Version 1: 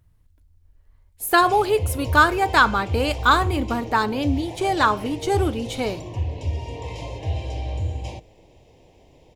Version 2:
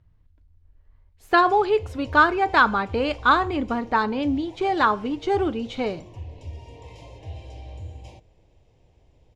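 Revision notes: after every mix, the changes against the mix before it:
speech: add distance through air 180 m; background -11.0 dB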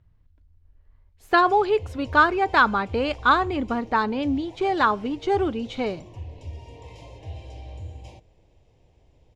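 speech: send -7.5 dB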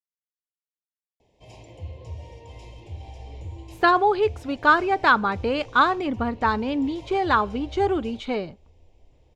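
speech: entry +2.50 s

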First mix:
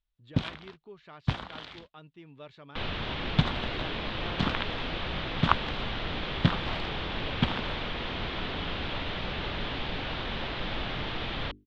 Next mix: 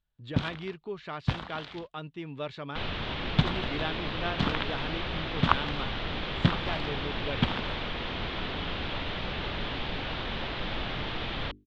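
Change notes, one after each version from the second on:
speech +11.0 dB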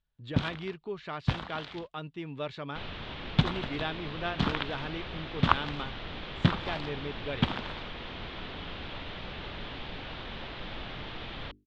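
second sound -6.5 dB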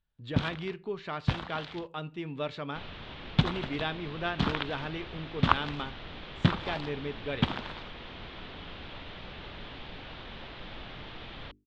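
second sound -3.5 dB; reverb: on, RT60 0.45 s

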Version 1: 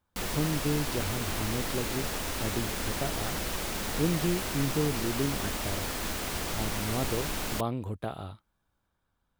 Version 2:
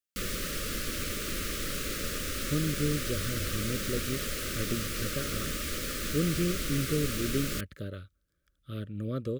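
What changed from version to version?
speech: entry +2.15 s; master: add elliptic band-stop 580–1200 Hz, stop band 60 dB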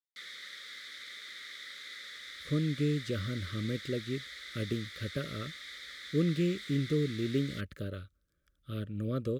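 background: add two resonant band-passes 2.7 kHz, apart 0.83 oct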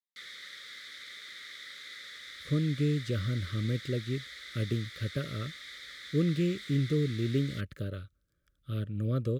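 master: add peaking EQ 120 Hz +7 dB 0.51 oct

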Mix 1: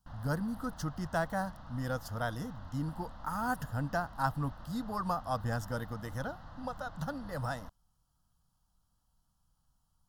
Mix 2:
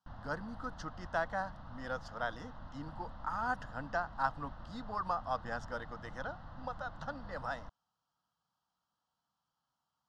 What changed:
speech: add frequency weighting A; master: add distance through air 130 m

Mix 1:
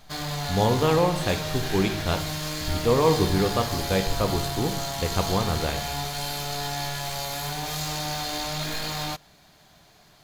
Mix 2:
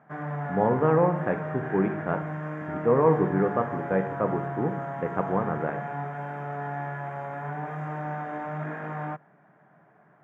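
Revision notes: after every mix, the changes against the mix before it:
master: add elliptic band-pass 140–1700 Hz, stop band 40 dB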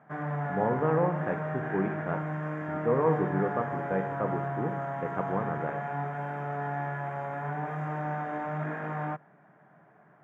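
speech -5.0 dB

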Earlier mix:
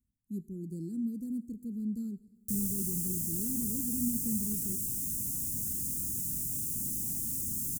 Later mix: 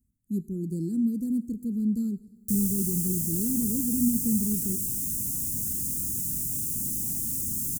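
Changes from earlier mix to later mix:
speech +8.5 dB; background +4.5 dB

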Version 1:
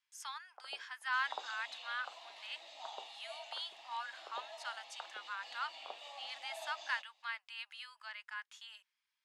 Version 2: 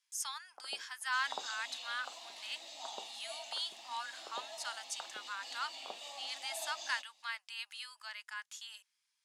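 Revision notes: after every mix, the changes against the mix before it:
master: remove three-band isolator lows -17 dB, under 410 Hz, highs -14 dB, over 3.6 kHz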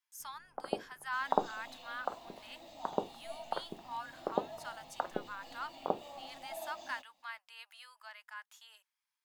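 first sound +11.5 dB; master: remove frequency weighting ITU-R 468

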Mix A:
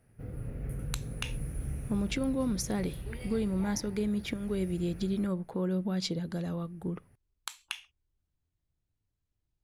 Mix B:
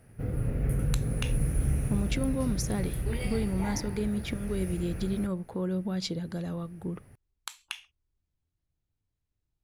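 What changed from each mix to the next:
background +9.0 dB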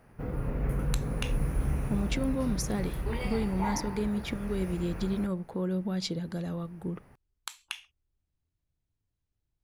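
background: add fifteen-band graphic EQ 100 Hz -9 dB, 1 kHz +11 dB, 10 kHz -10 dB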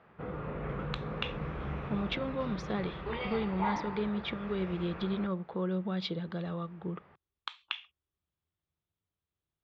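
master: add cabinet simulation 110–3600 Hz, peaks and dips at 120 Hz -10 dB, 260 Hz -9 dB, 1.2 kHz +6 dB, 3.5 kHz +7 dB

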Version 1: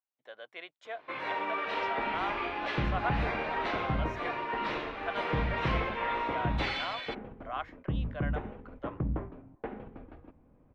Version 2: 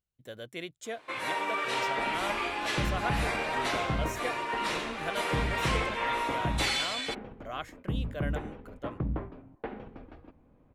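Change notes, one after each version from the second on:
speech: remove resonant high-pass 820 Hz, resonance Q 1.7; master: remove distance through air 290 m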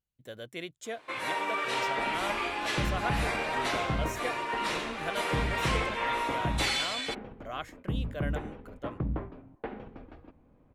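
no change

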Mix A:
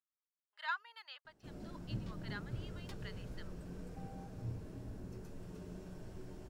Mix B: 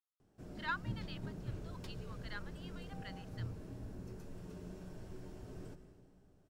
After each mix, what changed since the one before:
background: entry -1.05 s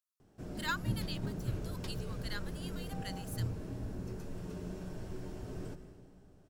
speech: remove distance through air 310 m; background +6.5 dB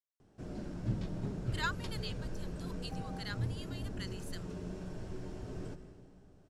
speech: entry +0.95 s; master: add low-pass 8.7 kHz 12 dB/octave

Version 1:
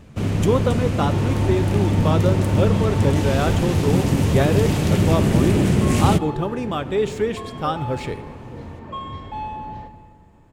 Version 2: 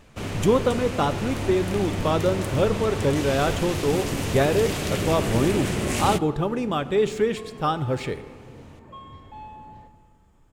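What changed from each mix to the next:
first sound: add peaking EQ 130 Hz -12 dB 3 oct; second sound -11.0 dB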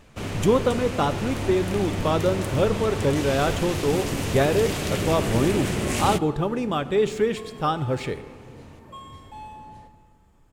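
second sound: remove distance through air 190 m

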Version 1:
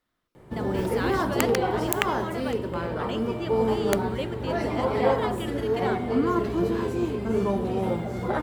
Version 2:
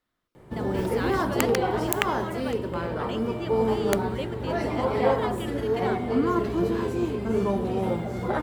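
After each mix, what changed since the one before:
speech: send -8.5 dB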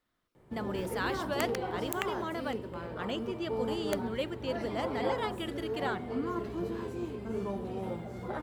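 background -10.5 dB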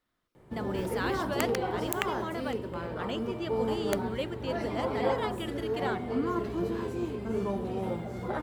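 background +4.0 dB

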